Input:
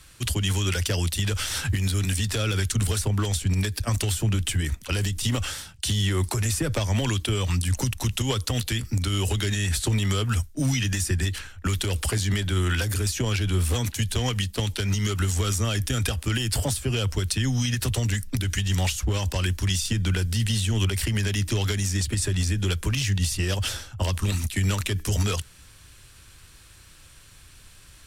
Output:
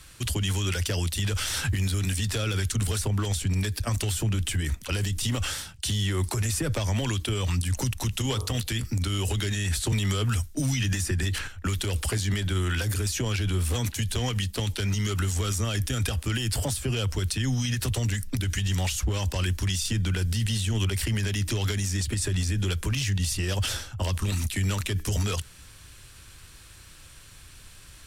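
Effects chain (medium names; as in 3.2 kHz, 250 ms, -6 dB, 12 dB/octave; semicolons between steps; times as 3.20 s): 8.14–8.59 s: de-hum 47.03 Hz, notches 27; peak limiter -20.5 dBFS, peak gain reduction 6 dB; 9.92–11.48 s: three bands compressed up and down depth 70%; trim +1.5 dB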